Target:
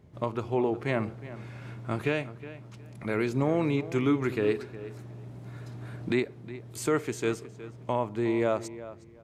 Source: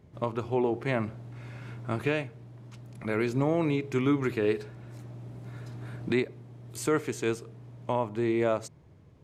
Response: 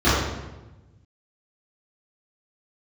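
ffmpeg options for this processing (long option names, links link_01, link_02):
-filter_complex "[0:a]asplit=2[link_01][link_02];[link_02]adelay=364,lowpass=frequency=3400:poles=1,volume=-15dB,asplit=2[link_03][link_04];[link_04]adelay=364,lowpass=frequency=3400:poles=1,volume=0.22[link_05];[link_01][link_03][link_05]amix=inputs=3:normalize=0"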